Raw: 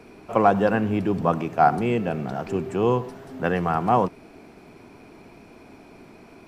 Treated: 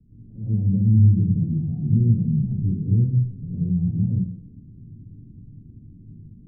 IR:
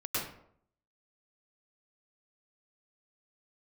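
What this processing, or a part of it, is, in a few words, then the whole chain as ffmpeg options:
club heard from the street: -filter_complex "[0:a]alimiter=limit=0.178:level=0:latency=1:release=28,lowpass=f=160:w=0.5412,lowpass=f=160:w=1.3066[s0];[1:a]atrim=start_sample=2205[s1];[s0][s1]afir=irnorm=-1:irlink=0,volume=2.11"

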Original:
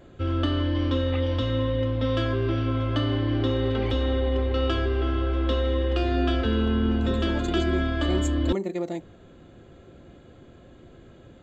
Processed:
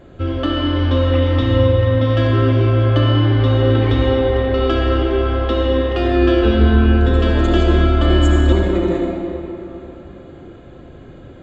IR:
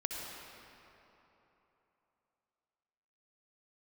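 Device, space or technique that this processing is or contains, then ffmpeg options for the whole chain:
swimming-pool hall: -filter_complex "[1:a]atrim=start_sample=2205[s0];[0:a][s0]afir=irnorm=-1:irlink=0,highshelf=f=4200:g=-8,volume=2.51"

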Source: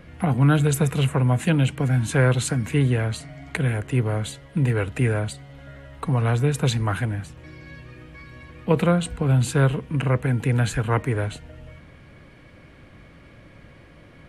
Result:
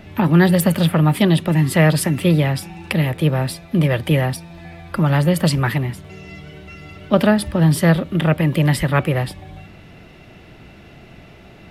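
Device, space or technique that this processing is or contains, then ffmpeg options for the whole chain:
nightcore: -af "asetrate=53802,aresample=44100,volume=1.78"

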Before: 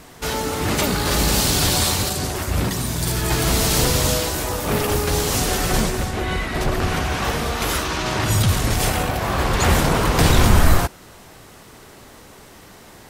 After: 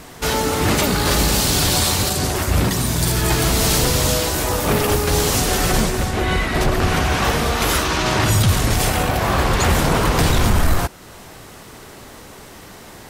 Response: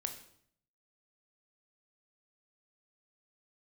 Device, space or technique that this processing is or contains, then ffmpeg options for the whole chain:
soft clipper into limiter: -af "asoftclip=type=tanh:threshold=0.631,alimiter=limit=0.266:level=0:latency=1:release=434,volume=1.68"

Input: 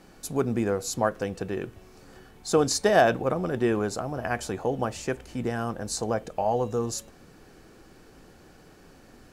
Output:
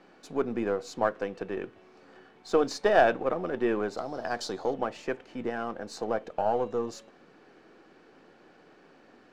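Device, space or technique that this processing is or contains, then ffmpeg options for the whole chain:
crystal radio: -filter_complex "[0:a]asettb=1/sr,asplit=3[s0][s1][s2];[s0]atrim=end=3.974[s3];[s1]atrim=start=3.97:end=4.74,asetpts=PTS-STARTPTS,afade=t=in:d=0.004:c=qsin,afade=t=out:st=0.766:d=0.004:c=qsin,highshelf=f=3300:t=q:w=3:g=9[s4];[s2]atrim=start=4.736[s5];[s3][s4]acrossfade=d=0.004:c1=hsin:c2=qsin[s6];[s6][s5]acrossfade=d=0.004:c1=qsin:c2=hsin,highpass=260,lowpass=3300,aeval=exprs='if(lt(val(0),0),0.708*val(0),val(0))':c=same"

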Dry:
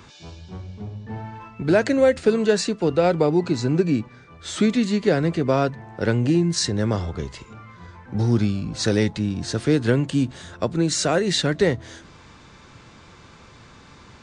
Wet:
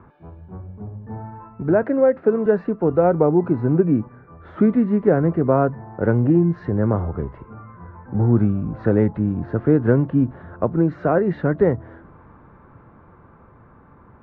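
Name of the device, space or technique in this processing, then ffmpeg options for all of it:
action camera in a waterproof case: -filter_complex "[0:a]asettb=1/sr,asplit=3[s0][s1][s2];[s0]atrim=end=1.834[s3];[s1]atrim=start=1.83:end=2.46,asetpts=PTS-STARTPTS,afade=t=in:d=0.004:c=qsin,afade=t=out:st=0.626:d=0.004:c=qsin,highpass=200[s4];[s2]atrim=start=2.456[s5];[s3][s4]acrossfade=d=0.004:c1=hsin:c2=qsin[s6];[s6][s5]acrossfade=d=0.004:c1=qsin:c2=hsin,lowpass=f=1400:w=0.5412,lowpass=f=1400:w=1.3066,dynaudnorm=f=290:g=17:m=1.58" -ar 48000 -c:a aac -b:a 64k

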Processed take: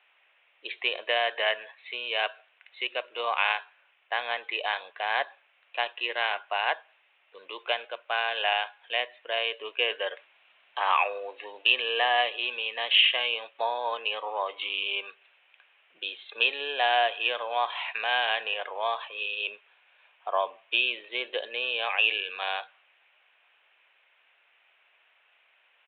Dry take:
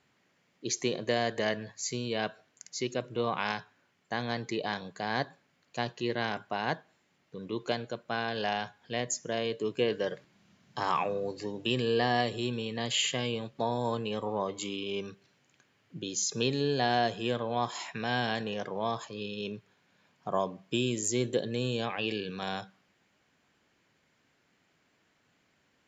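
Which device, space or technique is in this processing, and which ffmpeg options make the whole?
musical greeting card: -af "aresample=8000,aresample=44100,highpass=f=610:w=0.5412,highpass=f=610:w=1.3066,equalizer=f=2600:t=o:w=0.43:g=9.5,volume=1.78"

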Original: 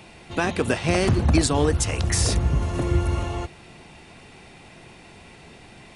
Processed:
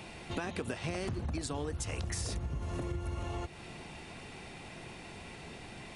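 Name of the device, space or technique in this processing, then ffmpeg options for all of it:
serial compression, leveller first: -af "acompressor=threshold=0.0562:ratio=2,acompressor=threshold=0.02:ratio=4,volume=0.891"

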